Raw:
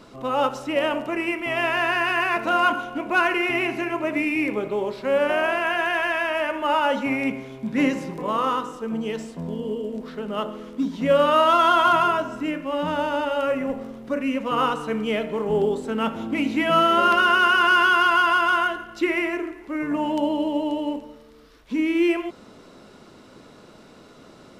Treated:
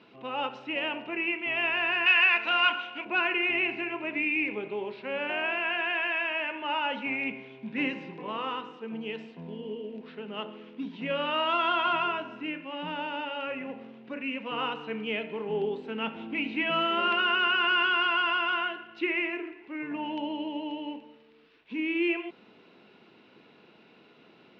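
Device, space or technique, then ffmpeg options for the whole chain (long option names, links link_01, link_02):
kitchen radio: -filter_complex "[0:a]highpass=190,equalizer=frequency=270:width_type=q:width=4:gain=-4,equalizer=frequency=580:width_type=q:width=4:gain=-8,equalizer=frequency=1200:width_type=q:width=4:gain=-7,equalizer=frequency=2600:width_type=q:width=4:gain=9,lowpass=frequency=3800:width=0.5412,lowpass=frequency=3800:width=1.3066,asettb=1/sr,asplit=3[link_01][link_02][link_03];[link_01]atrim=end=2.064[link_04];[link_02]atrim=start=2.06:end=3.05,asetpts=PTS-STARTPTS,afade=type=in:duration=0.004:curve=qsin,afade=type=out:start_time=0.986:duration=0.004:curve=qsin,tiltshelf=frequency=830:gain=-8.5[link_05];[link_03]atrim=start=3.046[link_06];[link_04][link_05]acrossfade=duration=0.004:curve1=hsin:curve2=qsin[link_07];[link_07][link_06]acrossfade=duration=0.004:curve1=qsin:curve2=hsin,volume=-6.5dB"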